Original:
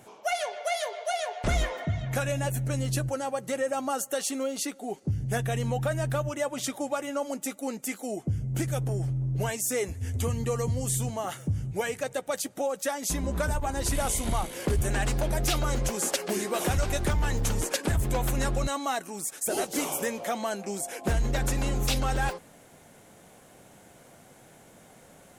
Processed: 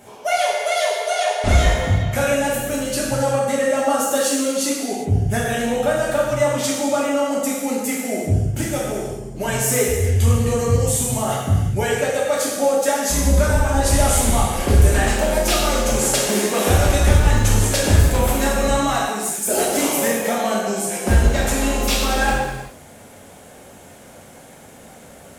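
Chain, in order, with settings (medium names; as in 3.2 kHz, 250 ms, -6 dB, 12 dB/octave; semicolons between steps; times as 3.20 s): gated-style reverb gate 430 ms falling, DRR -5.5 dB; trim +4 dB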